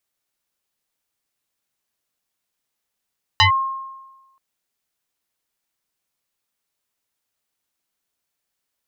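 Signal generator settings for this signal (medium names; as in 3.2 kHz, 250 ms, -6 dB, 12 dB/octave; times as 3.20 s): FM tone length 0.98 s, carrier 1.07 kHz, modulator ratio 0.91, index 3.8, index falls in 0.11 s linear, decay 1.18 s, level -8.5 dB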